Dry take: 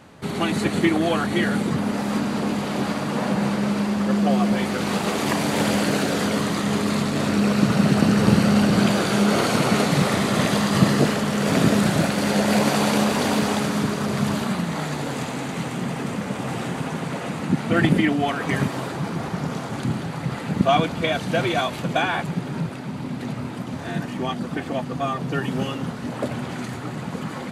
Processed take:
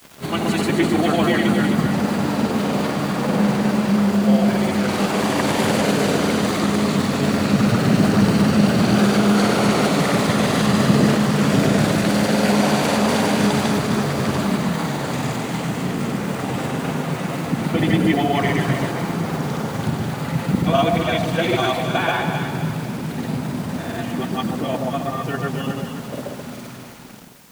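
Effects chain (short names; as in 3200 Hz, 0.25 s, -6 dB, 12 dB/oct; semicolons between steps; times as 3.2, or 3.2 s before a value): ending faded out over 3.00 s; in parallel at +2 dB: limiter -13 dBFS, peak gain reduction 9.5 dB; on the sum: requantised 6-bit, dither none; grains, pitch spread up and down by 0 st; on a send: echo with dull and thin repeats by turns 0.131 s, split 890 Hz, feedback 66%, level -3 dB; on the sum: added noise white -47 dBFS; gain -4 dB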